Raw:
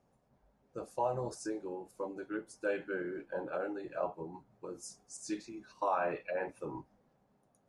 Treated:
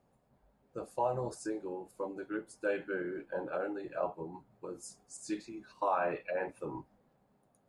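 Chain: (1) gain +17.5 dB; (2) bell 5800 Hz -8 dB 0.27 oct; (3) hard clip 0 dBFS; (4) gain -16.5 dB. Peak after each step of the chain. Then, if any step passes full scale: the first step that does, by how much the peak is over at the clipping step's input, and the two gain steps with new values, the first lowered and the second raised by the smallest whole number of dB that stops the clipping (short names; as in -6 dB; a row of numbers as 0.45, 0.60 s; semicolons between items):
-3.5, -3.5, -3.5, -20.0 dBFS; no overload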